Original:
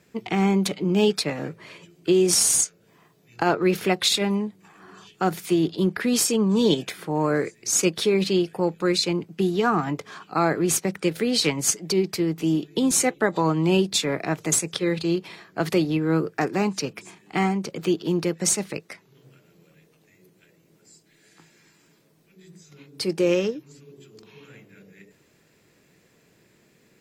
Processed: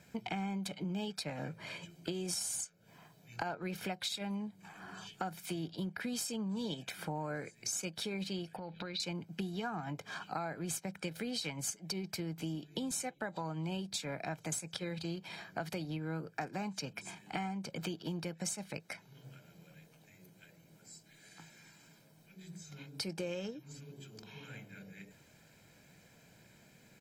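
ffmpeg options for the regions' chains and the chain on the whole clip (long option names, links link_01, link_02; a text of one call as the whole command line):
ffmpeg -i in.wav -filter_complex "[0:a]asettb=1/sr,asplit=3[link_01][link_02][link_03];[link_01]atrim=end=8.564[link_04];[link_02]atrim=start=8.56:end=9,asetpts=PTS-STARTPTS,afade=type=in:duration=0.004:curve=qsin,afade=type=out:start_time=0.436:duration=0.004:curve=qsin,acompressor=threshold=-35dB:ratio=6:attack=3.2:release=140:knee=1:detection=peak,highshelf=frequency=5600:width_type=q:width=3:gain=-13.5[link_05];[link_03]atrim=start=8.996[link_06];[link_04][link_05]acrossfade=duration=0.004:curve1=hsin:curve2=qsin[link_07];[link_07][link_06]acrossfade=duration=0.004:curve1=qsin:curve2=hsin,aecho=1:1:1.3:0.58,acompressor=threshold=-35dB:ratio=6,volume=-2dB" out.wav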